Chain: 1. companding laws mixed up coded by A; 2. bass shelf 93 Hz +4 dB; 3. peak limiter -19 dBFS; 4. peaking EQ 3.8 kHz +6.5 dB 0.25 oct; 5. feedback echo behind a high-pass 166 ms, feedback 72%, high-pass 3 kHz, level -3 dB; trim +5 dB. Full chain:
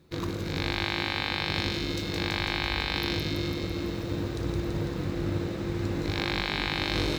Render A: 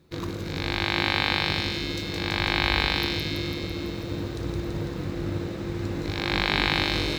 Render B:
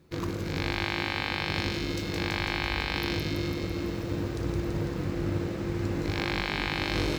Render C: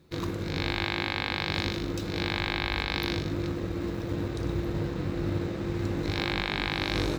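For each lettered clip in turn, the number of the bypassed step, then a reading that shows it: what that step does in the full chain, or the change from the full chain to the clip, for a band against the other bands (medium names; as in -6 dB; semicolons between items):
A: 3, crest factor change +5.0 dB; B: 4, 4 kHz band -3.0 dB; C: 5, echo-to-direct -9.0 dB to none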